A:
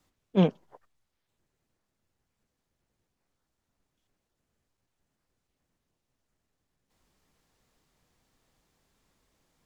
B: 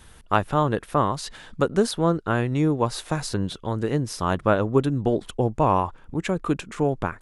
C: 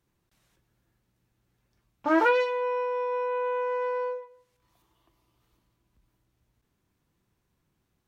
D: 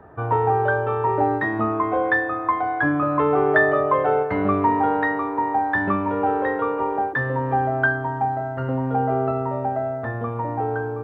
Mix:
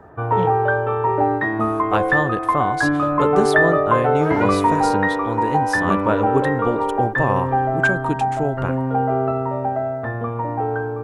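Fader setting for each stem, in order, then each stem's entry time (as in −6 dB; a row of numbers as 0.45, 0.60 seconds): −5.0, −0.5, −2.5, +2.0 decibels; 0.00, 1.60, 2.15, 0.00 seconds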